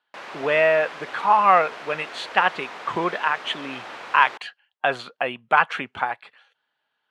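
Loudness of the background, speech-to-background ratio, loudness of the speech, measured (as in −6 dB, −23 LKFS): −37.0 LKFS, 15.0 dB, −22.0 LKFS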